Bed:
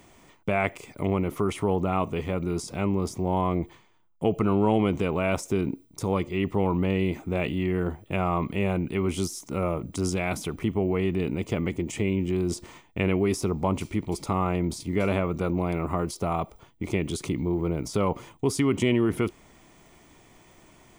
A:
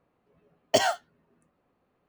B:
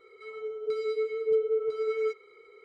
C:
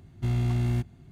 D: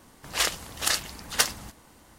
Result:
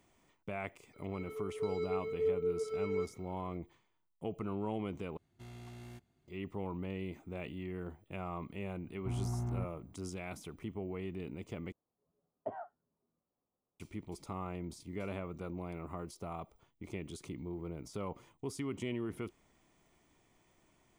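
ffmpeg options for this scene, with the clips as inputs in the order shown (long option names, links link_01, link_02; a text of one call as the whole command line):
ffmpeg -i bed.wav -i cue0.wav -i cue1.wav -i cue2.wav -filter_complex "[3:a]asplit=2[link_01][link_02];[0:a]volume=-15.5dB[link_03];[link_01]bass=frequency=250:gain=-11,treble=frequency=4000:gain=3[link_04];[link_02]lowpass=frequency=1000:width_type=q:width=2.3[link_05];[1:a]lowpass=frequency=1200:width=0.5412,lowpass=frequency=1200:width=1.3066[link_06];[link_03]asplit=3[link_07][link_08][link_09];[link_07]atrim=end=5.174[link_10];[link_04]atrim=end=1.11,asetpts=PTS-STARTPTS,volume=-15.5dB[link_11];[link_08]atrim=start=6.276:end=11.724[link_12];[link_06]atrim=end=2.08,asetpts=PTS-STARTPTS,volume=-17.5dB[link_13];[link_09]atrim=start=13.796[link_14];[2:a]atrim=end=2.64,asetpts=PTS-STARTPTS,volume=-7dB,afade=type=in:duration=0.004:curve=hsin,afade=type=out:start_time=2.636:duration=0.004:curve=hsin,adelay=930[link_15];[link_05]atrim=end=1.11,asetpts=PTS-STARTPTS,volume=-11dB,afade=type=in:duration=0.004:curve=hsin,afade=type=out:start_time=1.106:duration=0.004:curve=hsin,adelay=8830[link_16];[link_10][link_11]acrossfade=duration=0.004:curve1=hsin:curve2=hsin[link_17];[link_17][link_12]acrossfade=duration=0.004:curve1=hsin:curve2=hsin[link_18];[link_18][link_13]acrossfade=duration=0.004:curve1=hsin:curve2=hsin[link_19];[link_19][link_14]acrossfade=duration=0.004:curve1=hsin:curve2=hsin[link_20];[link_20][link_15][link_16]amix=inputs=3:normalize=0" out.wav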